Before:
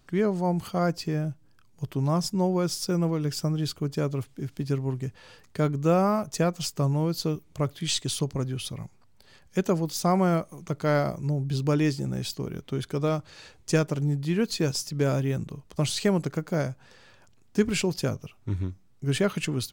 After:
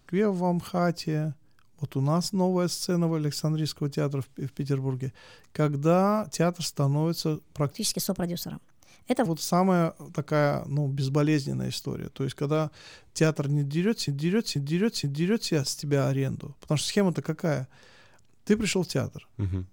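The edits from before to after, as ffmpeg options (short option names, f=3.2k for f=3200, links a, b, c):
-filter_complex "[0:a]asplit=6[a][b][c][d][e][f];[a]atrim=end=7.724[g];[b]atrim=start=7.72:end=9.78,asetpts=PTS-STARTPTS,asetrate=59094,aresample=44100[h];[c]atrim=start=9.776:end=14.602[i];[d]atrim=start=14.118:end=14.602[j];[e]atrim=start=14.118:end=14.602[k];[f]atrim=start=14.118[l];[g][h]acrossfade=d=0.004:c1=hsin:c2=hsin[m];[m][i]acrossfade=d=0.004:c1=hsin:c2=hsin[n];[n][j]acrossfade=d=0.004:c1=hsin:c2=hsin[o];[o][k]acrossfade=d=0.004:c1=hsin:c2=hsin[p];[p][l]acrossfade=d=0.004:c1=hsin:c2=hsin"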